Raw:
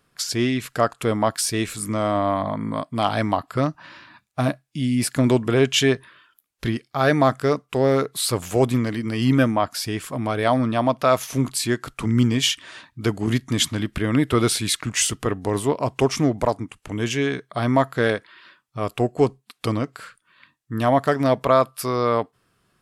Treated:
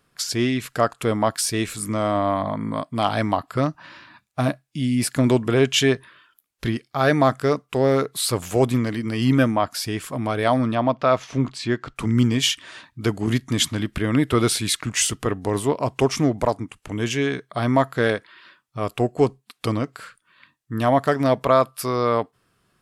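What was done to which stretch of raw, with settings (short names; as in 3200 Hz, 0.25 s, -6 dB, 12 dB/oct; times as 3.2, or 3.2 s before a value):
10.75–11.96 air absorption 140 m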